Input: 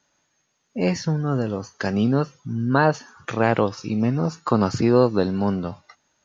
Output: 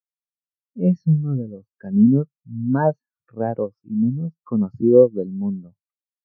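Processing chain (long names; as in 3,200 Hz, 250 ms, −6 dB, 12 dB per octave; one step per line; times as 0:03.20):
speech leveller within 5 dB 2 s
low-pass that shuts in the quiet parts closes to 1,500 Hz, open at −16 dBFS
every bin expanded away from the loudest bin 2.5 to 1
level +1 dB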